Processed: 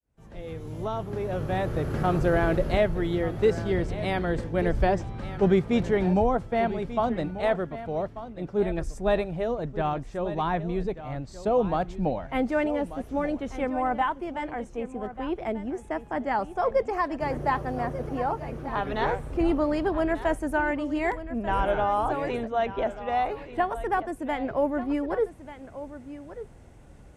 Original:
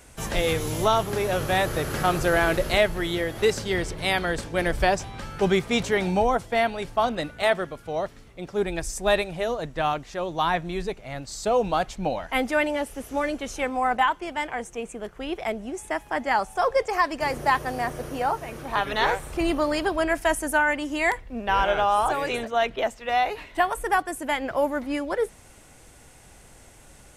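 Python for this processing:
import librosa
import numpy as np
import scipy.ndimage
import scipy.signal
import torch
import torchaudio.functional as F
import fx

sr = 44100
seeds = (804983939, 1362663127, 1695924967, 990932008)

y = fx.fade_in_head(x, sr, length_s=2.15)
y = fx.highpass(y, sr, hz=150.0, slope=6)
y = fx.tilt_eq(y, sr, slope=-4.0)
y = y + 10.0 ** (-13.5 / 20.0) * np.pad(y, (int(1189 * sr / 1000.0), 0))[:len(y)]
y = y * librosa.db_to_amplitude(-4.5)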